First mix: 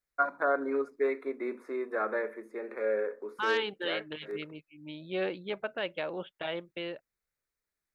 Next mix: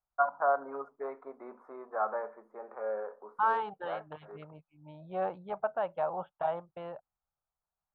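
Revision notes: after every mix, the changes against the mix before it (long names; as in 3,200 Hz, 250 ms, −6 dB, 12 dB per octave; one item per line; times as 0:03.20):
first voice −3.5 dB
master: add drawn EQ curve 160 Hz 0 dB, 320 Hz −13 dB, 510 Hz −3 dB, 770 Hz +12 dB, 1,300 Hz +3 dB, 2,000 Hz −16 dB, 4,500 Hz −22 dB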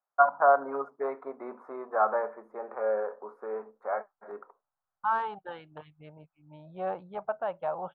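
first voice +6.5 dB
second voice: entry +1.65 s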